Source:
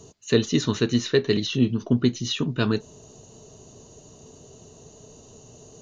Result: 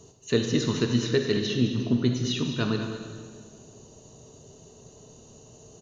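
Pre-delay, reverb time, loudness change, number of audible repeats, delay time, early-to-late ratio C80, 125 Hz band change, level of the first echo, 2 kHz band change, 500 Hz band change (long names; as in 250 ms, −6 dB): 35 ms, 1.7 s, −2.5 dB, 1, 210 ms, 5.0 dB, −1.0 dB, −11.0 dB, −2.5 dB, −3.0 dB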